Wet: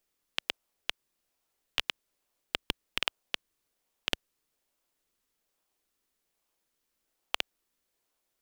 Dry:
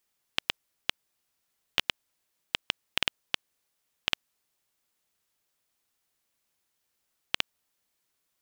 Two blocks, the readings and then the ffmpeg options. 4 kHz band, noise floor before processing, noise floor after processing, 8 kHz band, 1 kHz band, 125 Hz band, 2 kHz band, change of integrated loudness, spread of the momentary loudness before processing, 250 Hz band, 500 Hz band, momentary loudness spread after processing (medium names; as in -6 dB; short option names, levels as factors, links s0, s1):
-3.0 dB, -79 dBFS, -81 dBFS, -2.0 dB, -1.0 dB, -2.0 dB, -3.0 dB, -2.5 dB, 5 LU, +0.5 dB, +0.5 dB, 5 LU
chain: -filter_complex "[0:a]asplit=2[s0][s1];[s1]acrusher=samples=39:mix=1:aa=0.000001:lfo=1:lforange=39:lforate=1.2,volume=0.501[s2];[s0][s2]amix=inputs=2:normalize=0,equalizer=f=120:t=o:w=2.1:g=-11,volume=0.708"